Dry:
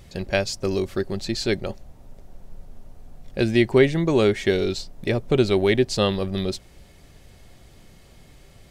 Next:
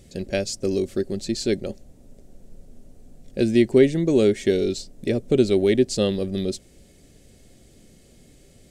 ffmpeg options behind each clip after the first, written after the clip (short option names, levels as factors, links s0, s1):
-af "equalizer=f=250:t=o:w=1:g=8,equalizer=f=500:t=o:w=1:g=6,equalizer=f=1000:t=o:w=1:g=-10,equalizer=f=8000:t=o:w=1:g=9,volume=0.562"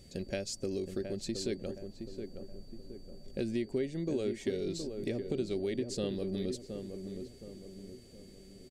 -filter_complex "[0:a]acompressor=threshold=0.0398:ratio=3,aeval=exprs='val(0)+0.00158*sin(2*PI*4600*n/s)':c=same,asplit=2[s0][s1];[s1]adelay=719,lowpass=f=1200:p=1,volume=0.473,asplit=2[s2][s3];[s3]adelay=719,lowpass=f=1200:p=1,volume=0.47,asplit=2[s4][s5];[s5]adelay=719,lowpass=f=1200:p=1,volume=0.47,asplit=2[s6][s7];[s7]adelay=719,lowpass=f=1200:p=1,volume=0.47,asplit=2[s8][s9];[s9]adelay=719,lowpass=f=1200:p=1,volume=0.47,asplit=2[s10][s11];[s11]adelay=719,lowpass=f=1200:p=1,volume=0.47[s12];[s0][s2][s4][s6][s8][s10][s12]amix=inputs=7:normalize=0,volume=0.501"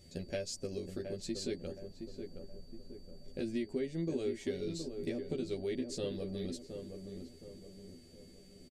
-filter_complex "[0:a]asplit=2[s0][s1];[s1]adelay=12,volume=0.75[s2];[s0][s2]amix=inputs=2:normalize=0,aresample=32000,aresample=44100,volume=0.596"